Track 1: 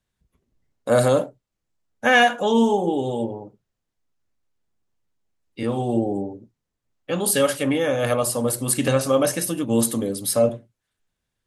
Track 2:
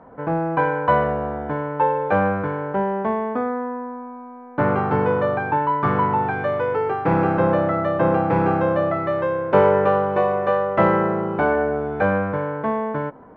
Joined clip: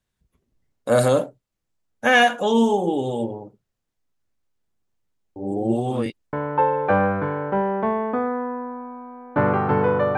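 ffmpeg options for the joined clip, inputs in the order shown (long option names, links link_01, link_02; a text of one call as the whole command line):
ffmpeg -i cue0.wav -i cue1.wav -filter_complex "[0:a]apad=whole_dur=10.17,atrim=end=10.17,asplit=2[link_01][link_02];[link_01]atrim=end=5.362[link_03];[link_02]atrim=start=5.358:end=6.332,asetpts=PTS-STARTPTS,areverse[link_04];[1:a]atrim=start=1.548:end=5.39[link_05];[link_03][link_04]acrossfade=duration=0.004:curve1=hsin:curve2=hsin[link_06];[link_06][link_05]acrossfade=duration=0.004:curve1=hsin:curve2=hsin" out.wav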